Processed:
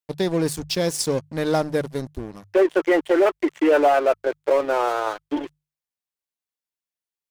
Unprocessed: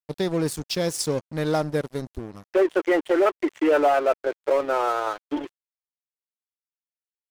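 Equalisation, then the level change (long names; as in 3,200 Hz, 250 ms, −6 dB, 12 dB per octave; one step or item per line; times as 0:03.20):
mains-hum notches 50/100/150 Hz
notch filter 1,300 Hz, Q 17
+2.5 dB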